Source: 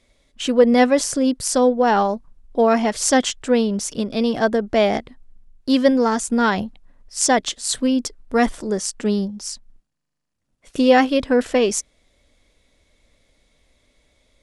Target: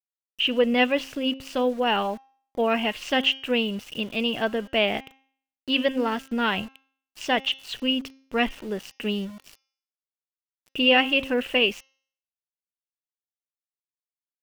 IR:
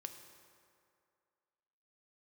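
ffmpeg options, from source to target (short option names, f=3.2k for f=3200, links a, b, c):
-af "lowpass=f=2.8k:t=q:w=12,aeval=exprs='val(0)*gte(abs(val(0)),0.02)':c=same,bandreject=f=267.1:t=h:w=4,bandreject=f=534.2:t=h:w=4,bandreject=f=801.3:t=h:w=4,bandreject=f=1.0684k:t=h:w=4,bandreject=f=1.3355k:t=h:w=4,bandreject=f=1.6026k:t=h:w=4,bandreject=f=1.8697k:t=h:w=4,bandreject=f=2.1368k:t=h:w=4,bandreject=f=2.4039k:t=h:w=4,bandreject=f=2.671k:t=h:w=4,bandreject=f=2.9381k:t=h:w=4,bandreject=f=3.2052k:t=h:w=4,bandreject=f=3.4723k:t=h:w=4,bandreject=f=3.7394k:t=h:w=4,bandreject=f=4.0065k:t=h:w=4,bandreject=f=4.2736k:t=h:w=4,bandreject=f=4.5407k:t=h:w=4,bandreject=f=4.8078k:t=h:w=4,bandreject=f=5.0749k:t=h:w=4,bandreject=f=5.342k:t=h:w=4,bandreject=f=5.6091k:t=h:w=4,bandreject=f=5.8762k:t=h:w=4,bandreject=f=6.1433k:t=h:w=4,bandreject=f=6.4104k:t=h:w=4,volume=-8dB"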